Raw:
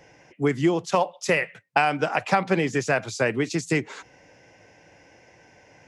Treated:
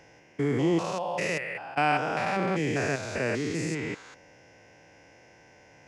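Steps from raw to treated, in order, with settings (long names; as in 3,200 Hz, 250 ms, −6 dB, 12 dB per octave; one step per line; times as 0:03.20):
spectrum averaged block by block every 200 ms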